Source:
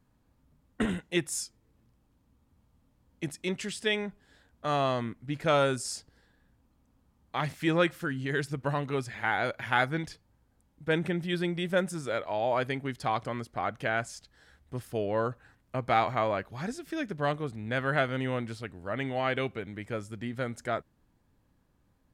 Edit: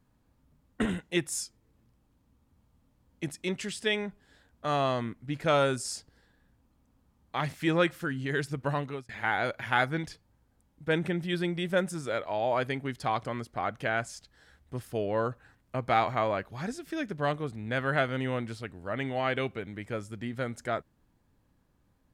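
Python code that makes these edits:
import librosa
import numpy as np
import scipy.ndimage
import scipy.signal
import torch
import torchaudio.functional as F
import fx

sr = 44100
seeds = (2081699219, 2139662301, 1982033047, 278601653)

y = fx.edit(x, sr, fx.fade_out_span(start_s=8.79, length_s=0.3), tone=tone)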